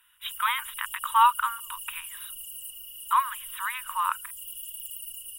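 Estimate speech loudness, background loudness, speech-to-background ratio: -27.0 LUFS, -37.5 LUFS, 10.5 dB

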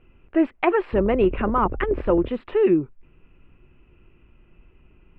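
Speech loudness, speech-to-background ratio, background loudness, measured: -22.0 LUFS, 12.0 dB, -34.0 LUFS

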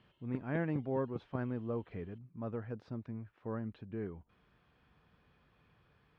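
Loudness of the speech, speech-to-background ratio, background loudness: -40.0 LUFS, 10.5 dB, -50.5 LUFS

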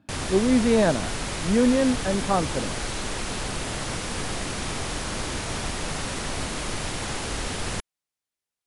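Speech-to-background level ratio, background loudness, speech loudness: 6.5 dB, -30.0 LUFS, -23.5 LUFS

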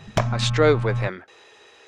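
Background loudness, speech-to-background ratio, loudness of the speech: -26.0 LUFS, 3.0 dB, -23.0 LUFS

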